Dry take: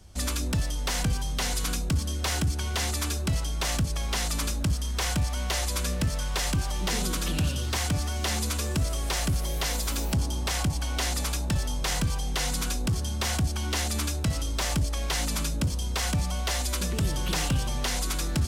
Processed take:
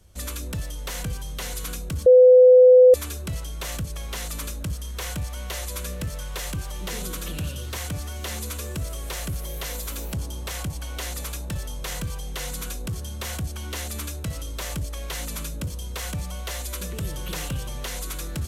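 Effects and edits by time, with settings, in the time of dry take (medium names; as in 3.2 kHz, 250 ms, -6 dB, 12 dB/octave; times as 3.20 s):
2.06–2.94 s: bleep 505 Hz -9 dBFS
whole clip: graphic EQ with 31 bands 250 Hz -5 dB, 500 Hz +5 dB, 800 Hz -5 dB, 5 kHz -5 dB, 12.5 kHz +8 dB; trim -3.5 dB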